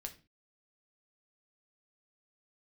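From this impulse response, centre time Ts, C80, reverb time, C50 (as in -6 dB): 8 ms, 19.5 dB, 0.30 s, 14.0 dB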